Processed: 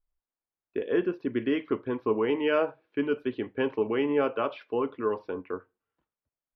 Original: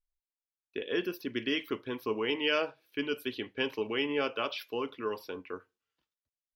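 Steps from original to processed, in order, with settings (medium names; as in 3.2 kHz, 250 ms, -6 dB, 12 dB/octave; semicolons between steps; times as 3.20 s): low-pass 1.3 kHz 12 dB/octave; trim +6.5 dB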